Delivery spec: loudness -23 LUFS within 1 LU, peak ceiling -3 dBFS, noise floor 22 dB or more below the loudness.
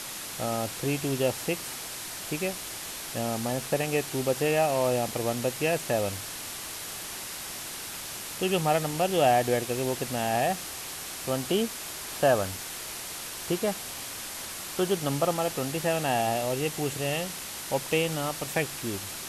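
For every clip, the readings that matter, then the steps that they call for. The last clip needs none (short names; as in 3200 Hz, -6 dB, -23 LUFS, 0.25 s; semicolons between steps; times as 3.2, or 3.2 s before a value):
noise floor -38 dBFS; noise floor target -51 dBFS; loudness -29.0 LUFS; peak -11.5 dBFS; loudness target -23.0 LUFS
-> denoiser 13 dB, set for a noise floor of -38 dBFS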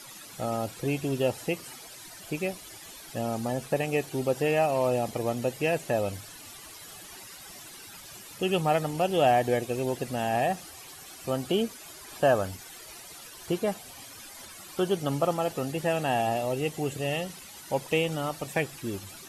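noise floor -46 dBFS; noise floor target -51 dBFS
-> denoiser 6 dB, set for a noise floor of -46 dBFS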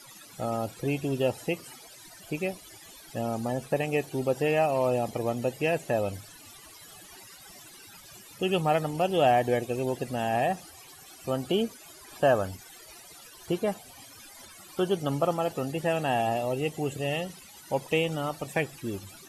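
noise floor -50 dBFS; noise floor target -51 dBFS
-> denoiser 6 dB, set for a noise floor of -50 dBFS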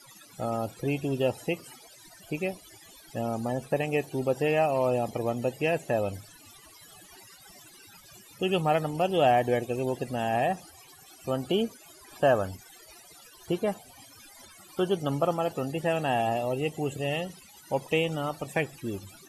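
noise floor -53 dBFS; loudness -29.0 LUFS; peak -12.0 dBFS; loudness target -23.0 LUFS
-> gain +6 dB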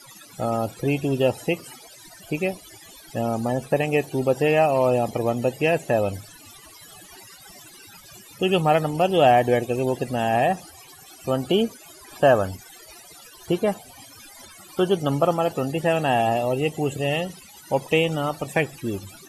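loudness -23.0 LUFS; peak -6.0 dBFS; noise floor -47 dBFS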